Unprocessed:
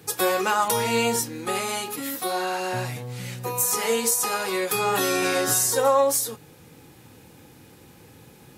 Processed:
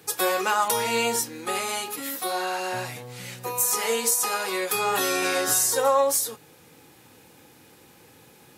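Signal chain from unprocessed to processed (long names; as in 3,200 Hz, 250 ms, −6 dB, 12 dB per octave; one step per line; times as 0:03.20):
low-shelf EQ 230 Hz −11 dB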